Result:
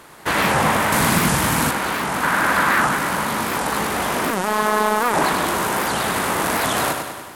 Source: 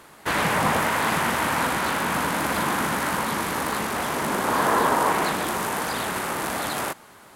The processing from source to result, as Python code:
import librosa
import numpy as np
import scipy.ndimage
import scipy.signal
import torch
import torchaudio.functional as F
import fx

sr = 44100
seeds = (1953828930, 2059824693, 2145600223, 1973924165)

y = fx.peak_eq(x, sr, hz=1500.0, db=9.5, octaves=1.1, at=(2.23, 2.88))
y = fx.echo_feedback(y, sr, ms=98, feedback_pct=56, wet_db=-6)
y = fx.robotise(y, sr, hz=213.0, at=(4.31, 5.15))
y = y + 10.0 ** (-20.0 / 20.0) * np.pad(y, (int(346 * sr / 1000.0), 0))[:len(y)]
y = fx.rider(y, sr, range_db=5, speed_s=2.0)
y = fx.bass_treble(y, sr, bass_db=11, treble_db=8, at=(0.92, 1.71))
y = fx.record_warp(y, sr, rpm=78.0, depth_cents=250.0)
y = y * librosa.db_to_amplitude(2.0)